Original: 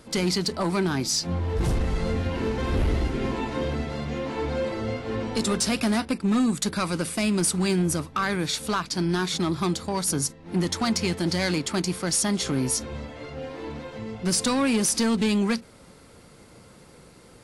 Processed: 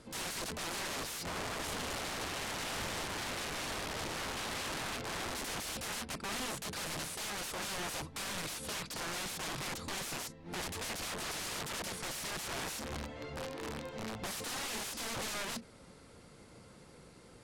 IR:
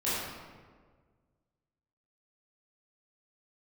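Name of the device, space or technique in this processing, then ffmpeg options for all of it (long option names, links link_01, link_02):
overflowing digital effects unit: -filter_complex "[0:a]asettb=1/sr,asplit=3[link_01][link_02][link_03];[link_01]atrim=end=11.024[link_04];[link_02]atrim=start=11.02:end=11.73,asetpts=PTS-STARTPTS,afade=type=in:duration=0.004:curve=qsin,afade=type=out:start_time=0.706:duration=0.004:curve=qsin,equalizer=frequency=160:width_type=o:width=0.67:gain=10,equalizer=frequency=1000:width_type=o:width=0.67:gain=12,equalizer=frequency=6300:width_type=o:width=0.67:gain=-5[link_05];[link_03]atrim=start=11.726[link_06];[link_04][link_05]acrossfade=duration=0.004:curve1=hsin:curve2=qsin[link_07];[link_07][link_06]acrossfade=duration=0.004:curve1=qsin:curve2=hsin,aeval=exprs='(mod(25.1*val(0)+1,2)-1)/25.1':channel_layout=same,lowpass=11000,volume=-6dB"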